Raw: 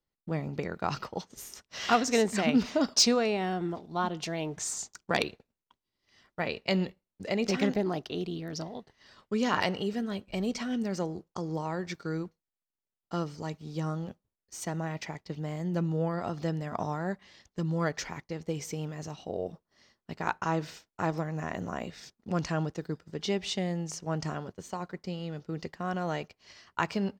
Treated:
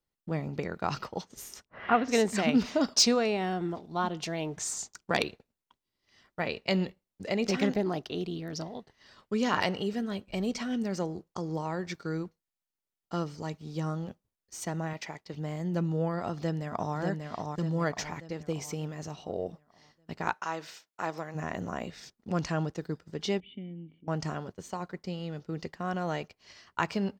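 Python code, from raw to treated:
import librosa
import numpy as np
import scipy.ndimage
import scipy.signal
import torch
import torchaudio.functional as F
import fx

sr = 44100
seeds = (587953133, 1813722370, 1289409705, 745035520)

y = fx.lowpass(x, sr, hz=fx.line((1.64, 1300.0), (2.08, 3200.0)), slope=24, at=(1.64, 2.08), fade=0.02)
y = fx.low_shelf(y, sr, hz=210.0, db=-9.0, at=(14.93, 15.34))
y = fx.echo_throw(y, sr, start_s=16.36, length_s=0.6, ms=590, feedback_pct=45, wet_db=-3.5)
y = fx.highpass(y, sr, hz=fx.line((20.33, 1100.0), (21.34, 500.0)), slope=6, at=(20.33, 21.34), fade=0.02)
y = fx.formant_cascade(y, sr, vowel='i', at=(23.4, 24.08))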